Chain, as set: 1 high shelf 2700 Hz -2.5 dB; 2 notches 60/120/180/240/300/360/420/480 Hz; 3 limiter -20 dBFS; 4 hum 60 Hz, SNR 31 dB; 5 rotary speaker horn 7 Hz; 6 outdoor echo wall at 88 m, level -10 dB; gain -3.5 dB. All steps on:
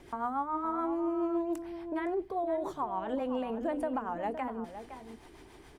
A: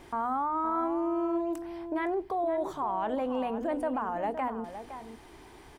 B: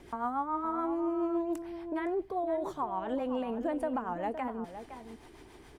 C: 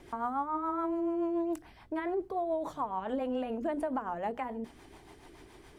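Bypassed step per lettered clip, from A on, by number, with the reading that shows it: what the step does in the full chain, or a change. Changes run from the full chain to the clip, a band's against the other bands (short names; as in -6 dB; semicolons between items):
5, 1 kHz band +1.5 dB; 2, momentary loudness spread change +2 LU; 6, echo-to-direct -11.5 dB to none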